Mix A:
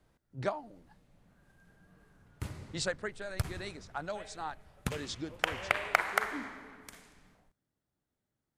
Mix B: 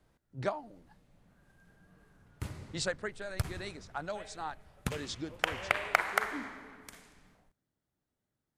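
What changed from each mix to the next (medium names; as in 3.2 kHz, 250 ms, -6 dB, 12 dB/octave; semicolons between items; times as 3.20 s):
no change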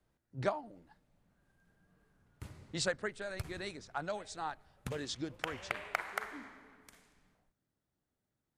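background -8.5 dB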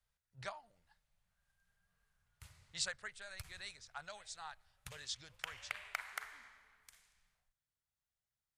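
master: add amplifier tone stack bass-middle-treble 10-0-10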